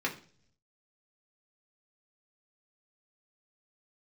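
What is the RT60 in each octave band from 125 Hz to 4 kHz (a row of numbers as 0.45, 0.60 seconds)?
1.1, 0.75, 0.55, 0.40, 0.40, 0.55 seconds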